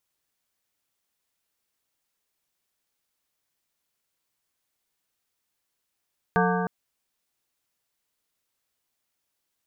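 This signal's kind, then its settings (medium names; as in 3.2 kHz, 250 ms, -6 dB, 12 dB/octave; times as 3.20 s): metal hit plate, length 0.31 s, lowest mode 180 Hz, modes 7, decay 3.02 s, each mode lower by 1 dB, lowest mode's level -22.5 dB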